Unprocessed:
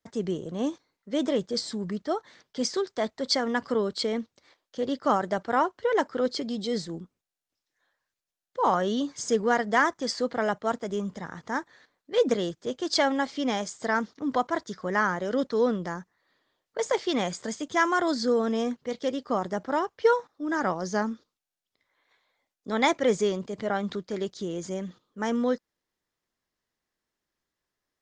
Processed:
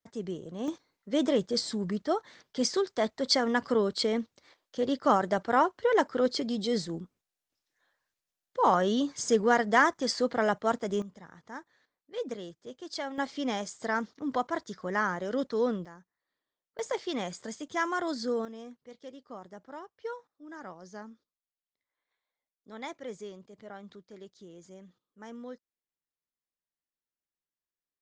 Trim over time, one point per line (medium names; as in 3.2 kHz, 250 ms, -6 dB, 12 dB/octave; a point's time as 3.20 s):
-6.5 dB
from 0.68 s 0 dB
from 11.02 s -12.5 dB
from 13.18 s -4 dB
from 15.85 s -16 dB
from 16.79 s -6.5 dB
from 18.45 s -17 dB